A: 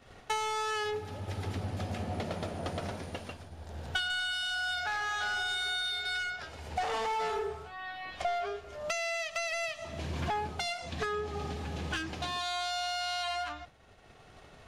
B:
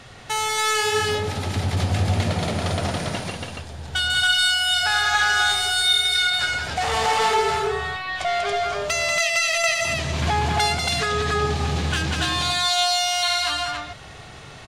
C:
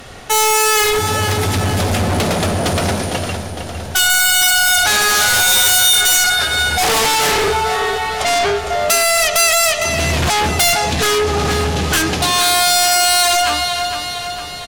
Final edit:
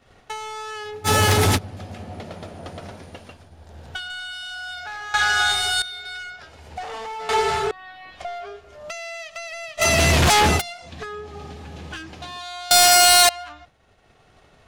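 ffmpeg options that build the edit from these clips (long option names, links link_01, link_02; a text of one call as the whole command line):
ffmpeg -i take0.wav -i take1.wav -i take2.wav -filter_complex "[2:a]asplit=3[link_01][link_02][link_03];[1:a]asplit=2[link_04][link_05];[0:a]asplit=6[link_06][link_07][link_08][link_09][link_10][link_11];[link_06]atrim=end=1.08[link_12];[link_01]atrim=start=1.04:end=1.59[link_13];[link_07]atrim=start=1.55:end=5.142[link_14];[link_04]atrim=start=5.138:end=5.822[link_15];[link_08]atrim=start=5.818:end=7.292[link_16];[link_05]atrim=start=7.288:end=7.712[link_17];[link_09]atrim=start=7.708:end=9.83[link_18];[link_02]atrim=start=9.77:end=10.62[link_19];[link_10]atrim=start=10.56:end=12.712[link_20];[link_03]atrim=start=12.708:end=13.292[link_21];[link_11]atrim=start=13.288[link_22];[link_12][link_13]acrossfade=duration=0.04:curve1=tri:curve2=tri[link_23];[link_23][link_14]acrossfade=duration=0.04:curve1=tri:curve2=tri[link_24];[link_24][link_15]acrossfade=duration=0.004:curve1=hsin:curve2=hsin[link_25];[link_25][link_16]acrossfade=duration=0.004:curve1=hsin:curve2=hsin[link_26];[link_26][link_17]acrossfade=duration=0.004:curve1=hsin:curve2=hsin[link_27];[link_27][link_18]acrossfade=duration=0.004:curve1=hsin:curve2=hsin[link_28];[link_28][link_19]acrossfade=duration=0.06:curve1=tri:curve2=tri[link_29];[link_29][link_20]acrossfade=duration=0.06:curve1=tri:curve2=tri[link_30];[link_30][link_21]acrossfade=duration=0.004:curve1=hsin:curve2=hsin[link_31];[link_31][link_22]acrossfade=duration=0.004:curve1=hsin:curve2=hsin" out.wav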